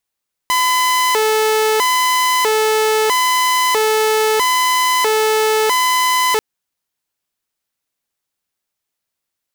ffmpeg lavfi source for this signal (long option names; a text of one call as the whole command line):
ffmpeg -f lavfi -i "aevalsrc='0.316*(2*mod((722.5*t+287.5/0.77*(0.5-abs(mod(0.77*t,1)-0.5))),1)-1)':duration=5.89:sample_rate=44100" out.wav